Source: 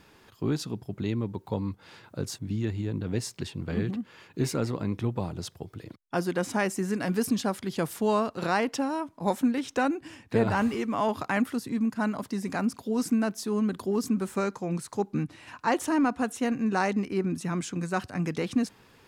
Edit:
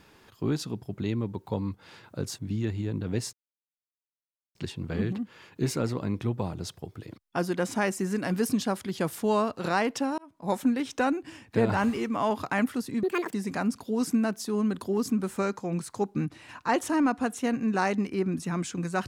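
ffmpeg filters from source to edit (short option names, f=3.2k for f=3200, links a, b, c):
-filter_complex "[0:a]asplit=5[a][b][c][d][e];[a]atrim=end=3.33,asetpts=PTS-STARTPTS,afade=t=out:st=3.326:d=0.004:c=hsin,apad=pad_dur=1.22[f];[b]atrim=start=3.33:end=8.96,asetpts=PTS-STARTPTS,afade=t=in:d=0.004:c=hsin,afade=t=out:st=5.626:d=0.004:c=hsin[g];[c]atrim=start=8.96:end=11.814,asetpts=PTS-STARTPTS,afade=t=in:d=0.39[h];[d]atrim=start=11.81:end=12.32,asetpts=PTS-STARTPTS,asetrate=73206,aresample=44100[i];[e]atrim=start=12.316[j];[f][g][h]concat=n=3:v=0:a=1[k];[k][i]acrossfade=d=0.004:c1=hsin:c2=hsin[l];[l][j]acrossfade=d=0.004:c1=hsin:c2=hsin"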